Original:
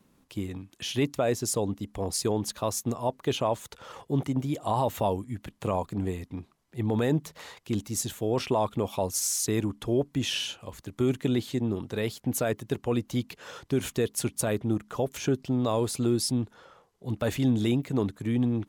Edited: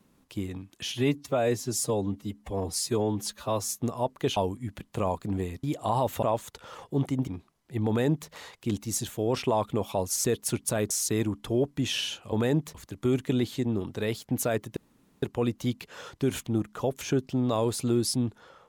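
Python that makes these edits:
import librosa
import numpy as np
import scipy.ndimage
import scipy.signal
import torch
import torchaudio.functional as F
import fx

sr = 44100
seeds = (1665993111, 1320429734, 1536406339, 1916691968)

y = fx.edit(x, sr, fx.stretch_span(start_s=0.92, length_s=1.93, factor=1.5),
    fx.swap(start_s=3.4, length_s=1.05, other_s=5.04, other_length_s=1.27),
    fx.duplicate(start_s=6.91, length_s=0.42, to_s=10.7),
    fx.insert_room_tone(at_s=12.72, length_s=0.46),
    fx.move(start_s=13.96, length_s=0.66, to_s=9.28), tone=tone)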